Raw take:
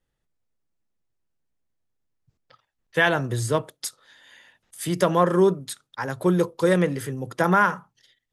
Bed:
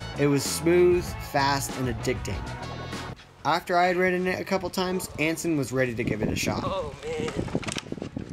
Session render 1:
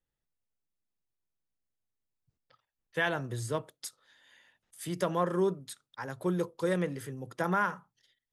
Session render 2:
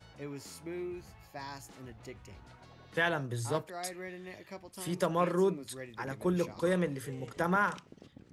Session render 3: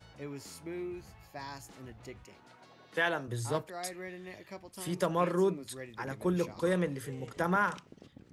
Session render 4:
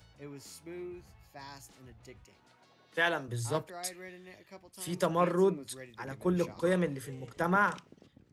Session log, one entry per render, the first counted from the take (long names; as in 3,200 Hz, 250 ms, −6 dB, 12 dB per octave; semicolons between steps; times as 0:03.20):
level −10 dB
mix in bed −20 dB
0:02.24–0:03.28: high-pass filter 220 Hz
upward compression, threshold −48 dBFS; multiband upward and downward expander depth 40%